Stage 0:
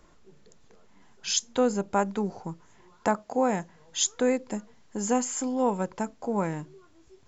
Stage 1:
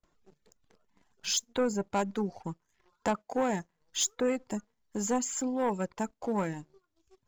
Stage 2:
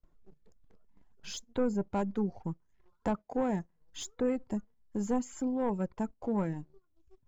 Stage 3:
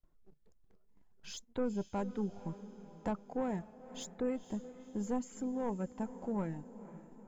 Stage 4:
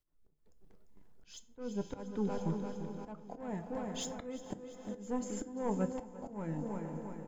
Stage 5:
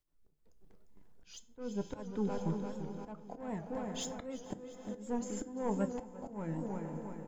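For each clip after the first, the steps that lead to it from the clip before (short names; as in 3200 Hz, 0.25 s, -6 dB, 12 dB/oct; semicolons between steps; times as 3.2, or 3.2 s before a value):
gate with hold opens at -50 dBFS; sample leveller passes 2; reverb removal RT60 0.71 s; gain -8.5 dB
tilt -3 dB/oct; gain -5.5 dB
diffused feedback echo 0.488 s, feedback 51%, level -14.5 dB; gain -5 dB
feedback echo 0.346 s, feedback 56%, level -10 dB; auto swell 0.386 s; FDN reverb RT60 0.55 s, low-frequency decay 0.85×, high-frequency decay 0.7×, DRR 10 dB; gain +5 dB
record warp 78 rpm, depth 100 cents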